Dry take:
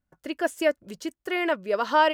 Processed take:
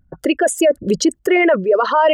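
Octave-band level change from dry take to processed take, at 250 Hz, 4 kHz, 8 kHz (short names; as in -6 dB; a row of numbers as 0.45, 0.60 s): +13.5, +7.5, +19.5 dB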